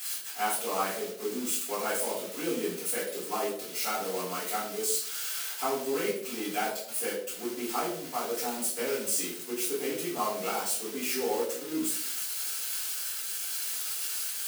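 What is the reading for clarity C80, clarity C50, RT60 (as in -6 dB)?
8.0 dB, 4.5 dB, 0.65 s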